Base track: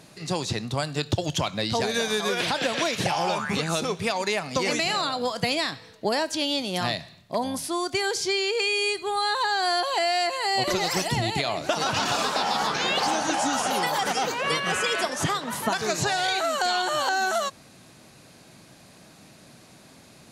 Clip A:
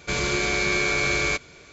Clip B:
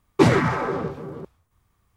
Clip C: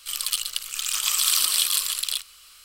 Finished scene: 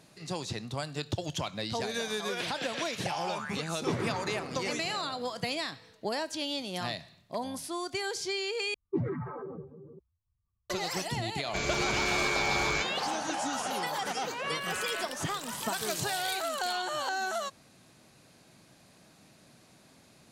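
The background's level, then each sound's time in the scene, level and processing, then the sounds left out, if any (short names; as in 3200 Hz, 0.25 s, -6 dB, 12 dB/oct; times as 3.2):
base track -8 dB
3.67 add B -16.5 dB + echo with dull and thin repeats by turns 0.131 s, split 970 Hz, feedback 76%, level -7 dB
8.74 replace with B -14.5 dB + spectral contrast raised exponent 2
11.46 add A -7 dB + wavefolder -15.5 dBFS
14.55 add C -17.5 dB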